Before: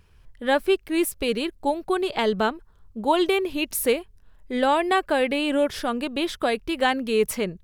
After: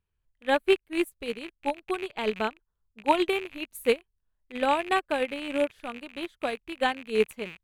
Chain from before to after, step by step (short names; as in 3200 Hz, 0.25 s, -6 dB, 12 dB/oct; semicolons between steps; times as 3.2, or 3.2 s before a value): rattling part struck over -44 dBFS, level -15 dBFS; bell 5300 Hz -11 dB 0.25 oct; upward expander 2.5:1, over -33 dBFS